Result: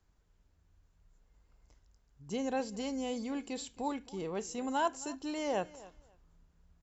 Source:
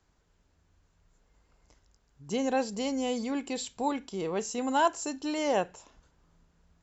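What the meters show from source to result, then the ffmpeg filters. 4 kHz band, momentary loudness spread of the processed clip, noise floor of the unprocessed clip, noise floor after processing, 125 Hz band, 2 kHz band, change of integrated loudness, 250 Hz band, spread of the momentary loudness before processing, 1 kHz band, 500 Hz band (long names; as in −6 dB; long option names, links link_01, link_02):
−6.5 dB, 8 LU, −71 dBFS, −72 dBFS, −4.0 dB, −6.5 dB, −6.0 dB, −5.0 dB, 8 LU, −6.5 dB, −6.0 dB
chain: -filter_complex "[0:a]lowshelf=frequency=100:gain=9.5,asplit=2[link_01][link_02];[link_02]aecho=0:1:268|536:0.106|0.0191[link_03];[link_01][link_03]amix=inputs=2:normalize=0,volume=-6.5dB"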